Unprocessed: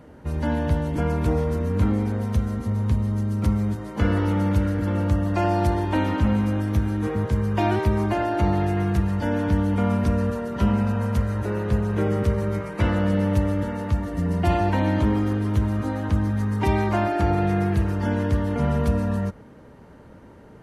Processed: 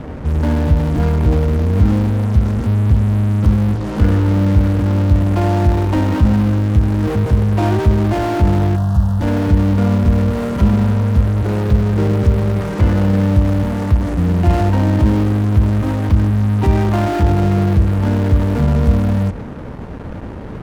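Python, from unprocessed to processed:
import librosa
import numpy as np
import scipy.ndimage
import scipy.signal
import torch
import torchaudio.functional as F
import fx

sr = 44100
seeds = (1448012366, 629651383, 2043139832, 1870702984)

p1 = fx.tilt_eq(x, sr, slope=-2.5)
p2 = fx.fuzz(p1, sr, gain_db=41.0, gate_db=-45.0)
p3 = p1 + (p2 * librosa.db_to_amplitude(-10.0))
p4 = fx.fixed_phaser(p3, sr, hz=930.0, stages=4, at=(8.75, 9.19), fade=0.02)
y = p4 * librosa.db_to_amplitude(-1.0)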